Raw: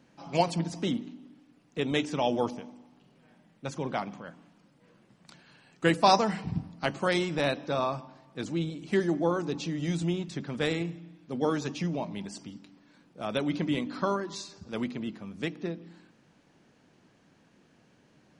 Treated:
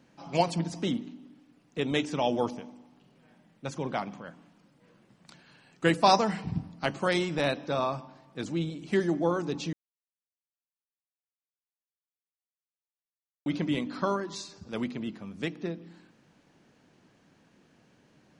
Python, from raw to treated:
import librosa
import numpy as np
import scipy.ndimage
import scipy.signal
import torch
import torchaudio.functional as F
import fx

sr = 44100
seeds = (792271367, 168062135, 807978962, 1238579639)

y = fx.edit(x, sr, fx.silence(start_s=9.73, length_s=3.73), tone=tone)